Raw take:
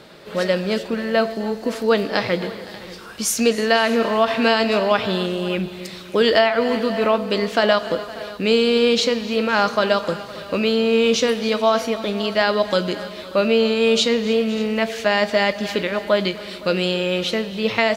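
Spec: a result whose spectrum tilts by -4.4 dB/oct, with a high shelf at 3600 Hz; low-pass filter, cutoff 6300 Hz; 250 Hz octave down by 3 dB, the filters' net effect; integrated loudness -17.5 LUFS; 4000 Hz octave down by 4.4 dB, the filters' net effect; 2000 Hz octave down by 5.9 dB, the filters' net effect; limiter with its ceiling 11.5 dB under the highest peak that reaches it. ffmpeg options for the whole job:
-af "lowpass=6.3k,equalizer=f=250:t=o:g=-3.5,equalizer=f=2k:t=o:g=-7.5,highshelf=f=3.6k:g=3.5,equalizer=f=4k:t=o:g=-4.5,volume=8.5dB,alimiter=limit=-8.5dB:level=0:latency=1"

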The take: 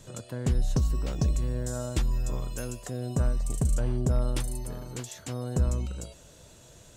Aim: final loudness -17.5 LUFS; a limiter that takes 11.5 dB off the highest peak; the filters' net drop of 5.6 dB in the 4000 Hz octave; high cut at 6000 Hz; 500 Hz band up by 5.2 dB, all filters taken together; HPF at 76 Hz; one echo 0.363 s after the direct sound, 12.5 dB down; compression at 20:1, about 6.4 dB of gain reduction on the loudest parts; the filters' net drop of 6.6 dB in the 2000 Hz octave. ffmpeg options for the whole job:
-af "highpass=76,lowpass=6k,equalizer=f=500:t=o:g=7,equalizer=f=2k:t=o:g=-9,equalizer=f=4k:t=o:g=-3.5,acompressor=threshold=-28dB:ratio=20,alimiter=level_in=4dB:limit=-24dB:level=0:latency=1,volume=-4dB,aecho=1:1:363:0.237,volume=21dB"

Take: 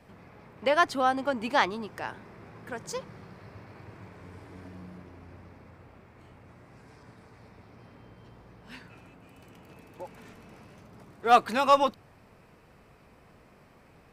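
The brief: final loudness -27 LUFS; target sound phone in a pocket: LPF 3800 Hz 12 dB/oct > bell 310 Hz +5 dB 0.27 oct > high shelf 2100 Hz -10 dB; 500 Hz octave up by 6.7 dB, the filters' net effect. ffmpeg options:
-af "lowpass=3.8k,equalizer=f=310:t=o:w=0.27:g=5,equalizer=f=500:t=o:g=8.5,highshelf=f=2.1k:g=-10,volume=-3.5dB"

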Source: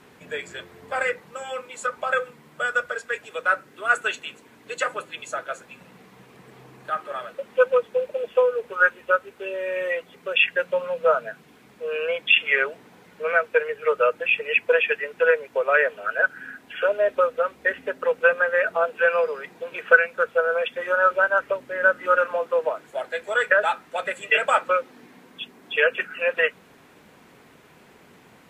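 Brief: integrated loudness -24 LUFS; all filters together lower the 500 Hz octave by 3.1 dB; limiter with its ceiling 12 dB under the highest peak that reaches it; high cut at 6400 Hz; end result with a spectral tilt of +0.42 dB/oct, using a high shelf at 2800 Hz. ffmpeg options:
-af "lowpass=6.4k,equalizer=f=500:t=o:g=-3,highshelf=f=2.8k:g=-8,volume=4dB,alimiter=limit=-11.5dB:level=0:latency=1"

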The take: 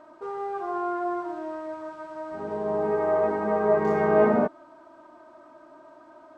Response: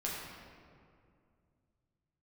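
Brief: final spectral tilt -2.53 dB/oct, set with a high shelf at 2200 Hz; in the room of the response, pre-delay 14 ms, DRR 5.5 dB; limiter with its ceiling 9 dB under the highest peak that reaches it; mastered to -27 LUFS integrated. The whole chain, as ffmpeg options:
-filter_complex "[0:a]highshelf=f=2.2k:g=-6,alimiter=limit=-17.5dB:level=0:latency=1,asplit=2[a][b];[1:a]atrim=start_sample=2205,adelay=14[c];[b][c]afir=irnorm=-1:irlink=0,volume=-9dB[d];[a][d]amix=inputs=2:normalize=0,volume=1dB"

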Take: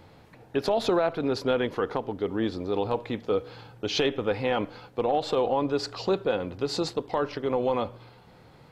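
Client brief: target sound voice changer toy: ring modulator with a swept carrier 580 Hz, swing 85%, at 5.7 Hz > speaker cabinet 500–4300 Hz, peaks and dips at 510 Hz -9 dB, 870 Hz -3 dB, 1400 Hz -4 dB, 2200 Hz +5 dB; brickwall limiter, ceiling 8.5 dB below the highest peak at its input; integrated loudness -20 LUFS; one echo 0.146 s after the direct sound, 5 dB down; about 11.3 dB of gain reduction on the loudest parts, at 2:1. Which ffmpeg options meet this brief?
-af "acompressor=threshold=-42dB:ratio=2,alimiter=level_in=6.5dB:limit=-24dB:level=0:latency=1,volume=-6.5dB,aecho=1:1:146:0.562,aeval=exprs='val(0)*sin(2*PI*580*n/s+580*0.85/5.7*sin(2*PI*5.7*n/s))':c=same,highpass=500,equalizer=f=510:t=q:w=4:g=-9,equalizer=f=870:t=q:w=4:g=-3,equalizer=f=1.4k:t=q:w=4:g=-4,equalizer=f=2.2k:t=q:w=4:g=5,lowpass=f=4.3k:w=0.5412,lowpass=f=4.3k:w=1.3066,volume=26.5dB"

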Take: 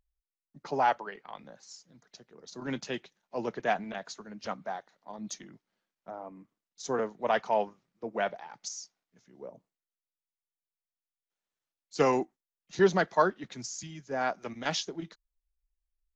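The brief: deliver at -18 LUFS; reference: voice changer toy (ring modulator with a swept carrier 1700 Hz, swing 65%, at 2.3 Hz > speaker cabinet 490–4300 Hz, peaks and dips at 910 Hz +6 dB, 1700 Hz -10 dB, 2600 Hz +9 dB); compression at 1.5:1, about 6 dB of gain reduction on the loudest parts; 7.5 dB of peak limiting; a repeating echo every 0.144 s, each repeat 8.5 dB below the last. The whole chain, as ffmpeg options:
-af "acompressor=threshold=-35dB:ratio=1.5,alimiter=limit=-24dB:level=0:latency=1,aecho=1:1:144|288|432|576:0.376|0.143|0.0543|0.0206,aeval=exprs='val(0)*sin(2*PI*1700*n/s+1700*0.65/2.3*sin(2*PI*2.3*n/s))':c=same,highpass=490,equalizer=f=910:t=q:w=4:g=6,equalizer=f=1.7k:t=q:w=4:g=-10,equalizer=f=2.6k:t=q:w=4:g=9,lowpass=f=4.3k:w=0.5412,lowpass=f=4.3k:w=1.3066,volume=20dB"

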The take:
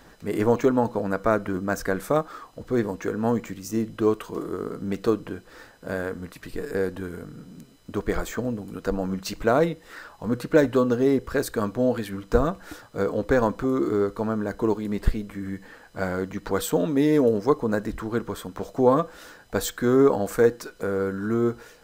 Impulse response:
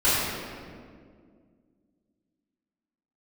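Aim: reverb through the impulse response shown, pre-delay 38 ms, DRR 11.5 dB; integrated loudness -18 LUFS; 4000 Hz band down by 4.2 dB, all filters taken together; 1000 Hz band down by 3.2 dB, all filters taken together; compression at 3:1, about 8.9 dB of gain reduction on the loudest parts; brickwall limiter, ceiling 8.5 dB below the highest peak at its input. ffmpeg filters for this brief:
-filter_complex "[0:a]equalizer=f=1k:t=o:g=-4,equalizer=f=4k:t=o:g=-5,acompressor=threshold=-26dB:ratio=3,alimiter=limit=-20.5dB:level=0:latency=1,asplit=2[a][b];[1:a]atrim=start_sample=2205,adelay=38[c];[b][c]afir=irnorm=-1:irlink=0,volume=-29dB[d];[a][d]amix=inputs=2:normalize=0,volume=14.5dB"

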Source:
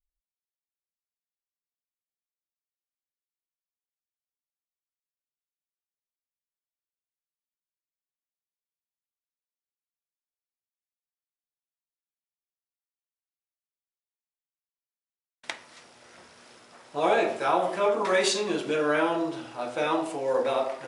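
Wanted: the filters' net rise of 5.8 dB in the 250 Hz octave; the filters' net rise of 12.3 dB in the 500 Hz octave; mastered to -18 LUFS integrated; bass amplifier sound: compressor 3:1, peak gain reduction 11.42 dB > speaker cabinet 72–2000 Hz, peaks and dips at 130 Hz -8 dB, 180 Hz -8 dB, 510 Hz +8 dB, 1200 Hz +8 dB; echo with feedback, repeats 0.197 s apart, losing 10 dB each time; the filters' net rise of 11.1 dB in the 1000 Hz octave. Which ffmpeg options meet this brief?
-af "equalizer=f=250:t=o:g=4.5,equalizer=f=500:t=o:g=6,equalizer=f=1k:t=o:g=8,aecho=1:1:197|394|591|788:0.316|0.101|0.0324|0.0104,acompressor=threshold=-26dB:ratio=3,highpass=f=72:w=0.5412,highpass=f=72:w=1.3066,equalizer=f=130:t=q:w=4:g=-8,equalizer=f=180:t=q:w=4:g=-8,equalizer=f=510:t=q:w=4:g=8,equalizer=f=1.2k:t=q:w=4:g=8,lowpass=f=2k:w=0.5412,lowpass=f=2k:w=1.3066,volume=5.5dB"

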